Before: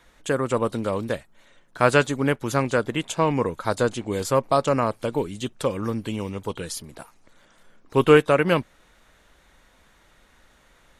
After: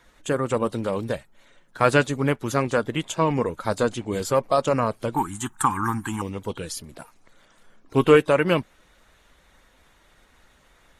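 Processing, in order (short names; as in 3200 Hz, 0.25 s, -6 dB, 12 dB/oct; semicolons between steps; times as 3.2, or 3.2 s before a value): bin magnitudes rounded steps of 15 dB; 5.16–6.22 EQ curve 330 Hz 0 dB, 560 Hz -27 dB, 810 Hz +14 dB, 1600 Hz +13 dB, 2400 Hz -1 dB, 4900 Hz -6 dB, 7000 Hz +11 dB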